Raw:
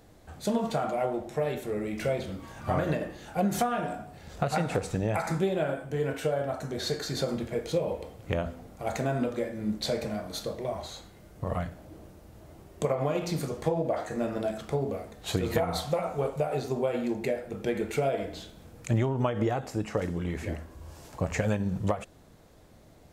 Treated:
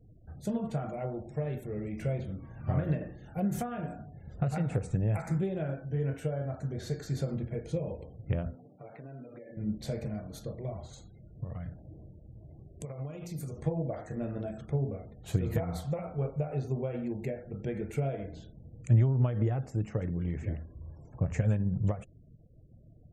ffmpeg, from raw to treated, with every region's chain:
-filter_complex "[0:a]asettb=1/sr,asplit=3[s0][s1][s2];[s0]atrim=end=8.554[s3];[s1]atrim=start=8.55:end=9.57,asetpts=PTS-STARTPTS,afade=t=in:d=0.004:c=qsin,afade=t=out:st=1.016:d=0.004:c=qsin,acompressor=threshold=0.0178:ratio=16:attack=3.2:release=140:knee=1:detection=peak,highpass=230,lowpass=3100,aecho=1:1:6.9:0.39,atrim=end_sample=44982[s4];[s2]atrim=start=9.566[s5];[s3][s4]acrossfade=d=0.004:c1=hsin:c2=qsin[s6];[s6][s5]acrossfade=d=0.004:c1=qsin:c2=hsin,asettb=1/sr,asplit=3[s7][s8][s9];[s7]atrim=end=10.934[s10];[s8]atrim=start=10.93:end=13.61,asetpts=PTS-STARTPTS,afade=t=in:d=0.004:c=qsin,afade=t=out:st=2.676:d=0.004:c=qsin,highshelf=f=3200:g=9.5,acompressor=threshold=0.02:ratio=4:attack=3.2:release=140:knee=1:detection=peak[s11];[s9]atrim=start=13.606[s12];[s10][s11]acrossfade=d=0.004:c1=hsin:c2=qsin[s13];[s13][s12]acrossfade=d=0.004:c1=qsin:c2=hsin,lowshelf=f=82:g=8,afftfilt=real='re*gte(hypot(re,im),0.00447)':imag='im*gte(hypot(re,im),0.00447)':win_size=1024:overlap=0.75,equalizer=f=125:t=o:w=1:g=10,equalizer=f=1000:t=o:w=1:g=-6,equalizer=f=4000:t=o:w=1:g=-9,volume=0.447"

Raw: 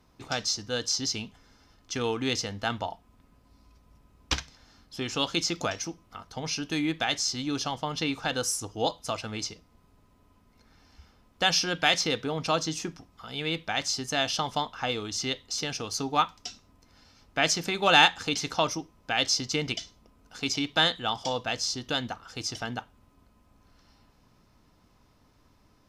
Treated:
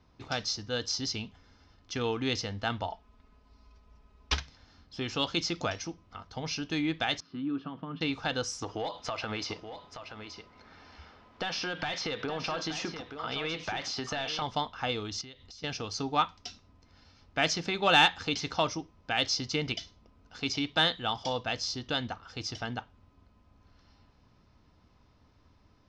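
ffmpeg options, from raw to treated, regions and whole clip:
-filter_complex "[0:a]asettb=1/sr,asplit=3[s0][s1][s2];[s0]atrim=end=2.894[s3];[s1]atrim=start=2.89:end=4.37,asetpts=PTS-STARTPTS,afade=t=in:d=0.004:c=qsin,afade=t=out:st=1.476:d=0.004:c=qsin,equalizer=f=190:w=1.6:g=-7.5,aecho=1:1:4.7:0.73,atrim=end_sample=65268[s4];[s2]atrim=start=4.366[s5];[s3][s4]acrossfade=d=0.004:c1=hsin:c2=qsin[s6];[s6][s5]acrossfade=d=0.004:c1=qsin:c2=hsin,asettb=1/sr,asplit=3[s7][s8][s9];[s7]atrim=end=7.204[s10];[s8]atrim=start=7.2:end=8.01,asetpts=PTS-STARTPTS,afade=t=in:d=0.004:c=qsin,afade=t=out:st=0.806:d=0.004:c=qsin,acompressor=threshold=0.0178:ratio=3:attack=3.2:release=140:knee=1:detection=peak,acrusher=bits=5:mode=log:mix=0:aa=0.000001,highpass=160,equalizer=f=170:t=q:w=4:g=10,equalizer=f=280:t=q:w=4:g=9,equalizer=f=560:t=q:w=4:g=-5,equalizer=f=810:t=q:w=4:g=-9,equalizer=f=1200:t=q:w=4:g=4,equalizer=f=2100:t=q:w=4:g=-9,lowpass=f=2500:w=0.5412,lowpass=f=2500:w=1.3066[s11];[s9]atrim=start=8.006[s12];[s10][s11]acrossfade=d=0.004:c1=hsin:c2=qsin[s13];[s13][s12]acrossfade=d=0.004:c1=qsin:c2=hsin,asettb=1/sr,asplit=3[s14][s15][s16];[s14]atrim=end=8.624[s17];[s15]atrim=start=8.62:end=14.42,asetpts=PTS-STARTPTS,afade=t=in:d=0.004:c=qsin,afade=t=out:st=5.796:d=0.004:c=qsin,asplit=2[s18][s19];[s19]highpass=f=720:p=1,volume=10,asoftclip=type=tanh:threshold=0.501[s20];[s18][s20]amix=inputs=2:normalize=0,lowpass=f=2000:p=1,volume=0.501,acompressor=threshold=0.0398:ratio=10:attack=3.2:release=140:knee=1:detection=peak,aecho=1:1:876:0.335,atrim=end_sample=255780[s21];[s16]atrim=start=14.416[s22];[s17][s21]acrossfade=d=0.004:c1=hsin:c2=qsin[s23];[s23][s22]acrossfade=d=0.004:c1=qsin:c2=hsin,asettb=1/sr,asplit=3[s24][s25][s26];[s24]atrim=end=15.214[s27];[s25]atrim=start=15.21:end=15.64,asetpts=PTS-STARTPTS,afade=t=in:d=0.004:c=qsin,afade=t=out:st=0.426:d=0.004:c=qsin,asubboost=boost=11.5:cutoff=240,acompressor=threshold=0.00794:ratio=12:attack=3.2:release=140:knee=1:detection=peak[s28];[s26]atrim=start=15.636[s29];[s27][s28]acrossfade=d=0.004:c1=hsin:c2=qsin[s30];[s30][s29]acrossfade=d=0.004:c1=qsin:c2=hsin,lowpass=f=5600:w=0.5412,lowpass=f=5600:w=1.3066,equalizer=f=80:w=1.9:g=6.5,acontrast=48,volume=0.398"

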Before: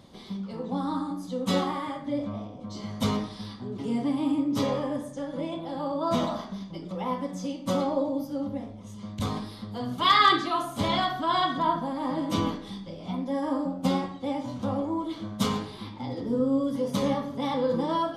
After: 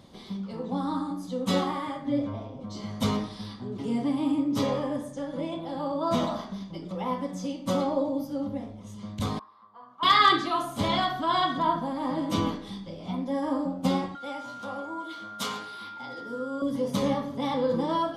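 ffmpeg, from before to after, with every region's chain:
-filter_complex "[0:a]asettb=1/sr,asplit=3[s0][s1][s2];[s0]atrim=end=2.044[s3];[s1]atrim=start=2.04:end=2.64,asetpts=PTS-STARTPTS,afade=t=in:d=0.004:c=qsin,afade=t=out:st=0.596:d=0.004:c=qsin,highshelf=f=5700:g=-6,aecho=1:1:7.5:0.69,atrim=end_sample=26460[s4];[s2]atrim=start=2.636[s5];[s3][s4]acrossfade=d=0.004:c1=hsin:c2=qsin[s6];[s6][s5]acrossfade=d=0.004:c1=qsin:c2=hsin,asettb=1/sr,asplit=3[s7][s8][s9];[s7]atrim=end=9.394[s10];[s8]atrim=start=9.39:end=10.03,asetpts=PTS-STARTPTS,afade=t=in:d=0.004:c=qsin,afade=t=out:st=0.636:d=0.004:c=qsin,lowpass=f=1100:t=q:w=9.4,aderivative[s11];[s9]atrim=start=10.026[s12];[s10][s11]acrossfade=d=0.004:c1=hsin:c2=qsin[s13];[s13][s12]acrossfade=d=0.004:c1=qsin:c2=hsin,asettb=1/sr,asplit=3[s14][s15][s16];[s14]atrim=end=14.154[s17];[s15]atrim=start=14.15:end=16.62,asetpts=PTS-STARTPTS,afade=t=in:d=0.004:c=qsin,afade=t=out:st=2.466:d=0.004:c=qsin,highpass=f=940:p=1,aeval=exprs='val(0)+0.0112*sin(2*PI*1400*n/s)':c=same[s18];[s16]atrim=start=16.616[s19];[s17][s18]acrossfade=d=0.004:c1=hsin:c2=qsin[s20];[s20][s19]acrossfade=d=0.004:c1=qsin:c2=hsin"

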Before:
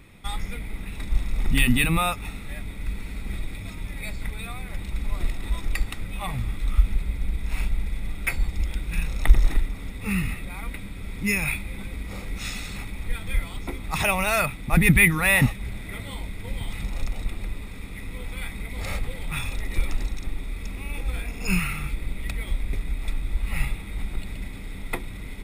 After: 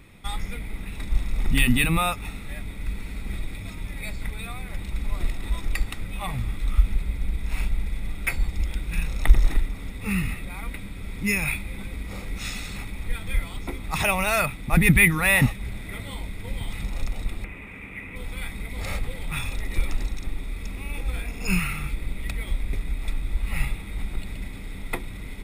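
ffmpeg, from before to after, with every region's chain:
-filter_complex "[0:a]asettb=1/sr,asplit=3[s0][s1][s2];[s0]atrim=end=17.444[s3];[s1]atrim=start=17.44:end=18.16,asetpts=PTS-STARTPTS,afade=t=in:d=0.004:c=qsin,afade=t=out:st=0.716:d=0.004:c=qsin,highpass=f=130:p=1,highshelf=f=3300:t=q:w=3:g=-10[s4];[s2]atrim=start=18.156[s5];[s3][s4]acrossfade=d=0.004:c1=hsin:c2=qsin[s6];[s6][s5]acrossfade=d=0.004:c1=qsin:c2=hsin"

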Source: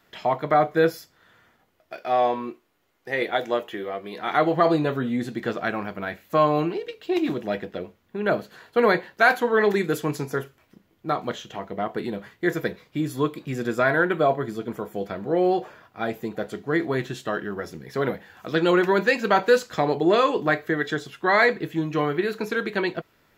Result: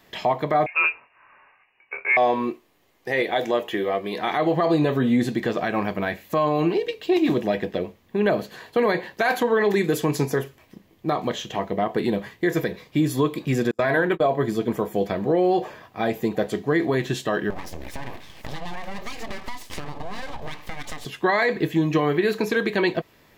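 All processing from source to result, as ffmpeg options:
-filter_complex "[0:a]asettb=1/sr,asplit=3[s0][s1][s2];[s0]atrim=end=0.664[s3];[s1]atrim=start=0.66:end=2.17,asetpts=PTS-STARTPTS,afade=t=in:d=0.004:c=qsin,afade=t=out:st=1.506:d=0.004:c=qsin,lowshelf=f=420:g=-10,asplit=2[s4][s5];[s5]adelay=24,volume=0.473[s6];[s4][s6]amix=inputs=2:normalize=0,atrim=end_sample=66591,lowpass=f=2500:t=q:w=0.5098,lowpass=f=2500:t=q:w=0.6013,lowpass=f=2500:t=q:w=0.9,lowpass=f=2500:t=q:w=2.563,afreqshift=-2900[s7];[s2]atrim=start=2.166[s8];[s3][s7]acrossfade=d=0.004:c1=hsin:c2=qsin[s9];[s9][s8]acrossfade=d=0.004:c1=qsin:c2=hsin,asettb=1/sr,asplit=3[s10][s11][s12];[s10]atrim=end=13.714[s13];[s11]atrim=start=13.71:end=14.26,asetpts=PTS-STARTPTS,afade=t=in:d=0.004:c=qsin,afade=t=out:st=0.546:d=0.004:c=qsin,bandreject=f=50:t=h:w=6,bandreject=f=100:t=h:w=6,bandreject=f=150:t=h:w=6,bandreject=f=200:t=h:w=6,bandreject=f=250:t=h:w=6,bandreject=f=300:t=h:w=6,bandreject=f=350:t=h:w=6,bandreject=f=400:t=h:w=6,bandreject=f=450:t=h:w=6,agate=range=0.01:threshold=0.0447:ratio=16:release=100:detection=peak[s14];[s12]atrim=start=14.256[s15];[s13][s14]acrossfade=d=0.004:c1=hsin:c2=qsin[s16];[s16][s15]acrossfade=d=0.004:c1=qsin:c2=hsin,asettb=1/sr,asplit=3[s17][s18][s19];[s17]atrim=end=17.504[s20];[s18]atrim=start=17.5:end=21.05,asetpts=PTS-STARTPTS,afade=t=in:d=0.004:c=qsin,afade=t=out:st=3.546:d=0.004:c=qsin,acompressor=threshold=0.0224:ratio=12:attack=3.2:release=140:knee=1:detection=peak,aeval=exprs='abs(val(0))':c=same[s21];[s19]atrim=start=21.046[s22];[s20][s21]acrossfade=d=0.004:c1=hsin:c2=qsin[s23];[s23][s22]acrossfade=d=0.004:c1=qsin:c2=hsin,bandreject=f=1400:w=5.1,alimiter=limit=0.119:level=0:latency=1:release=117,volume=2.24"

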